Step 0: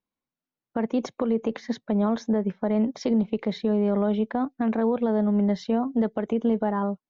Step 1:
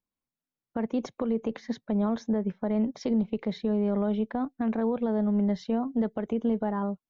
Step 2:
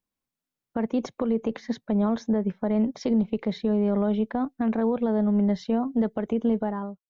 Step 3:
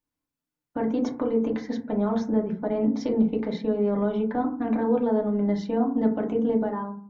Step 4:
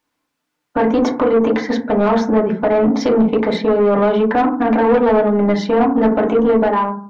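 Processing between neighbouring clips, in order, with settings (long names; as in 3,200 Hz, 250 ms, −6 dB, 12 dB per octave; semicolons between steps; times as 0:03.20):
low-shelf EQ 120 Hz +8.5 dB; level −5 dB
fade-out on the ending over 0.53 s; level +3 dB
feedback delay network reverb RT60 0.46 s, low-frequency decay 1.55×, high-frequency decay 0.3×, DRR 0 dB; level −3 dB
mid-hump overdrive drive 21 dB, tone 2,700 Hz, clips at −10 dBFS; level +5.5 dB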